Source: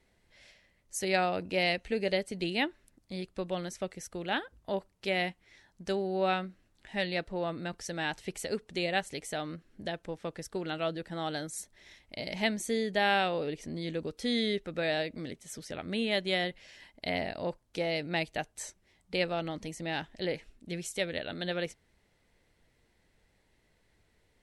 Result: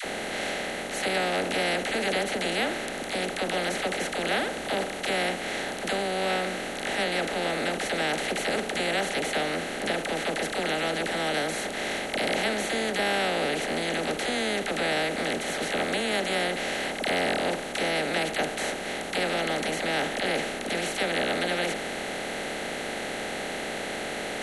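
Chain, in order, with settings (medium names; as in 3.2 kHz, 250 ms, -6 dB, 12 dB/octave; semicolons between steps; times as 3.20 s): spectral levelling over time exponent 0.2; phase dispersion lows, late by 52 ms, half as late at 620 Hz; trim -5 dB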